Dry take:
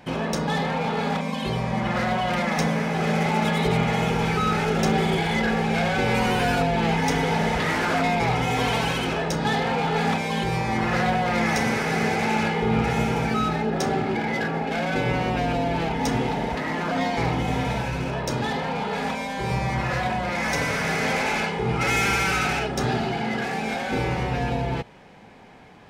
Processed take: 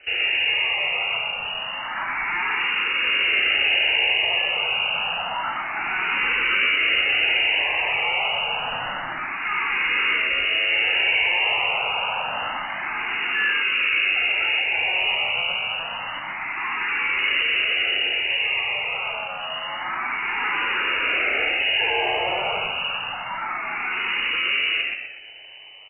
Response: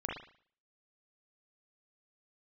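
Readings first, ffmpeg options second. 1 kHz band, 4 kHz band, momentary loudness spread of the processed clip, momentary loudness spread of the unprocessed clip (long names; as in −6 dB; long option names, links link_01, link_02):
−3.5 dB, +10.0 dB, 10 LU, 5 LU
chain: -filter_complex "[0:a]asoftclip=type=tanh:threshold=-27dB,aeval=exprs='0.0447*(cos(1*acos(clip(val(0)/0.0447,-1,1)))-cos(1*PI/2))+0.00562*(cos(2*acos(clip(val(0)/0.0447,-1,1)))-cos(2*PI/2))+0.01*(cos(3*acos(clip(val(0)/0.0447,-1,1)))-cos(3*PI/2))+0.00355*(cos(6*acos(clip(val(0)/0.0447,-1,1)))-cos(6*PI/2))+0.00794*(cos(8*acos(clip(val(0)/0.0447,-1,1)))-cos(8*PI/2))':channel_layout=same,asplit=6[link_01][link_02][link_03][link_04][link_05][link_06];[link_02]adelay=124,afreqshift=100,volume=-4dB[link_07];[link_03]adelay=248,afreqshift=200,volume=-11.3dB[link_08];[link_04]adelay=372,afreqshift=300,volume=-18.7dB[link_09];[link_05]adelay=496,afreqshift=400,volume=-26dB[link_10];[link_06]adelay=620,afreqshift=500,volume=-33.3dB[link_11];[link_01][link_07][link_08][link_09][link_10][link_11]amix=inputs=6:normalize=0,asplit=2[link_12][link_13];[1:a]atrim=start_sample=2205[link_14];[link_13][link_14]afir=irnorm=-1:irlink=0,volume=-13dB[link_15];[link_12][link_15]amix=inputs=2:normalize=0,lowpass=frequency=2600:width_type=q:width=0.5098,lowpass=frequency=2600:width_type=q:width=0.6013,lowpass=frequency=2600:width_type=q:width=0.9,lowpass=frequency=2600:width_type=q:width=2.563,afreqshift=-3000,asplit=2[link_16][link_17];[link_17]afreqshift=0.28[link_18];[link_16][link_18]amix=inputs=2:normalize=1,volume=6dB"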